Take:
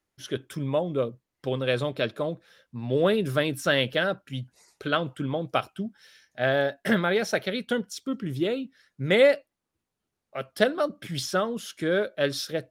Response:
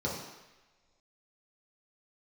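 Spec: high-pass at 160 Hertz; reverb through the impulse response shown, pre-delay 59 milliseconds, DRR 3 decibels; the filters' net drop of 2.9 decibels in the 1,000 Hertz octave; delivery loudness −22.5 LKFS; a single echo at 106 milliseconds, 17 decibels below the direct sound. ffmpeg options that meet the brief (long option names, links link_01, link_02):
-filter_complex "[0:a]highpass=160,equalizer=frequency=1000:width_type=o:gain=-4.5,aecho=1:1:106:0.141,asplit=2[link_01][link_02];[1:a]atrim=start_sample=2205,adelay=59[link_03];[link_02][link_03]afir=irnorm=-1:irlink=0,volume=-10dB[link_04];[link_01][link_04]amix=inputs=2:normalize=0,volume=1.5dB"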